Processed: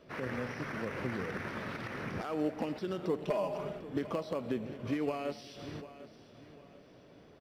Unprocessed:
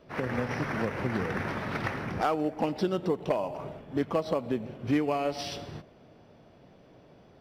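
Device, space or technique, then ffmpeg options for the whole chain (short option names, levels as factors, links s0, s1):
de-esser from a sidechain: -filter_complex "[0:a]asplit=2[s0][s1];[s1]highpass=6400,apad=whole_len=326479[s2];[s0][s2]sidechaincompress=threshold=0.00112:ratio=5:attack=3:release=63,lowshelf=f=190:g=-5.5,asettb=1/sr,asplit=3[s3][s4][s5];[s3]atrim=end=3.244[s6];[s4]atrim=start=3.24:end=3.79,asetpts=PTS-STARTPTS,afade=t=in:d=0.004:c=qsin,afade=t=out:st=0.546:d=0.004:c=qsin,aecho=1:1:4.9:0.79,atrim=end_sample=24255[s7];[s5]atrim=start=3.786[s8];[s6][s7]acrossfade=d=0.004:c1=hsin:c2=qsin[s9];[s9][s8]acrossfade=d=0.004:c1=qsin:c2=hsin,equalizer=f=810:w=2.3:g=-5.5,aecho=1:1:747|1494|2241:0.178|0.0622|0.0218"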